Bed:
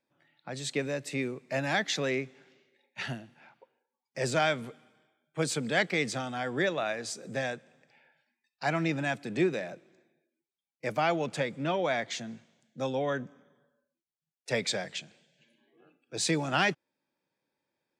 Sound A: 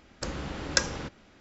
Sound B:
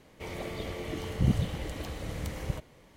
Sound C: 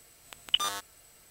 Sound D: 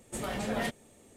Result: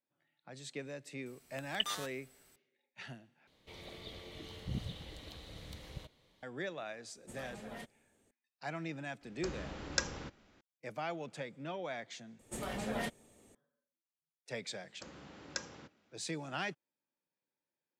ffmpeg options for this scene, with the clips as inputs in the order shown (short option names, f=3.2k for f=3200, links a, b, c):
-filter_complex "[4:a]asplit=2[a][b];[1:a]asplit=2[c][d];[0:a]volume=-12dB[e];[2:a]equalizer=f=3.8k:w=1.9:g=13.5[f];[d]highpass=120[g];[e]asplit=3[h][i][j];[h]atrim=end=3.474[k];[f]atrim=end=2.96,asetpts=PTS-STARTPTS,volume=-14dB[l];[i]atrim=start=6.426:end=12.394[m];[b]atrim=end=1.16,asetpts=PTS-STARTPTS,volume=-5dB[n];[j]atrim=start=13.546[o];[3:a]atrim=end=1.3,asetpts=PTS-STARTPTS,volume=-8.5dB,afade=t=in:d=0.004:c=hsin,afade=t=out:st=1.296:d=0.004:c=hsin,adelay=1260[p];[a]atrim=end=1.16,asetpts=PTS-STARTPTS,volume=-15dB,afade=t=in:d=0.004:c=hsin,afade=t=out:st=1.156:d=0.004:c=hsin,adelay=7150[q];[c]atrim=end=1.4,asetpts=PTS-STARTPTS,volume=-8.5dB,afade=t=in:d=0.004:c=hsin,afade=t=out:st=1.396:d=0.004:c=hsin,adelay=9210[r];[g]atrim=end=1.4,asetpts=PTS-STARTPTS,volume=-15.5dB,afade=t=in:d=0.004:c=hsin,afade=t=out:st=1.396:d=0.004:c=hsin,adelay=14790[s];[k][l]acrossfade=d=0.004:c1=hsin:c2=hsin[t];[t][m]acrossfade=d=0.004:c1=hsin:c2=hsin[u];[u][n]acrossfade=d=0.004:c1=hsin:c2=hsin[v];[v][o]acrossfade=d=0.004:c1=hsin:c2=hsin[w];[w][p][q][r][s]amix=inputs=5:normalize=0"